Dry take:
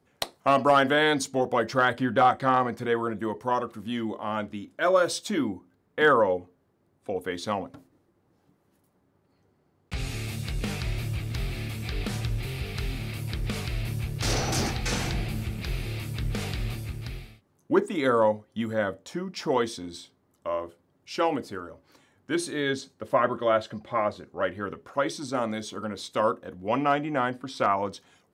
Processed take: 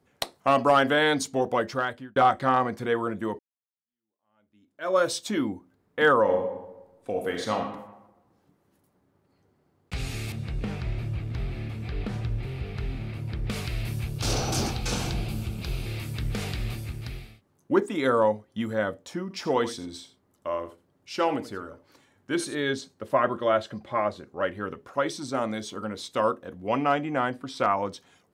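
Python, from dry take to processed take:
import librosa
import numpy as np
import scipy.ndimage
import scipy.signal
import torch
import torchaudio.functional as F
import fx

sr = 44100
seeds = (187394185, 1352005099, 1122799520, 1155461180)

y = fx.reverb_throw(x, sr, start_s=6.21, length_s=1.35, rt60_s=1.0, drr_db=1.5)
y = fx.lowpass(y, sr, hz=1300.0, slope=6, at=(10.32, 13.5))
y = fx.peak_eq(y, sr, hz=1900.0, db=-10.0, octaves=0.38, at=(14.09, 15.86))
y = fx.echo_single(y, sr, ms=83, db=-14.0, at=(19.22, 22.55))
y = fx.edit(y, sr, fx.fade_out_span(start_s=1.54, length_s=0.62),
    fx.fade_in_span(start_s=3.39, length_s=1.59, curve='exp'), tone=tone)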